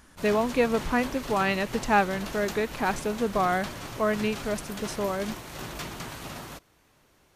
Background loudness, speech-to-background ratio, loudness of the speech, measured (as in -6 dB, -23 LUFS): -38.0 LUFS, 10.5 dB, -27.5 LUFS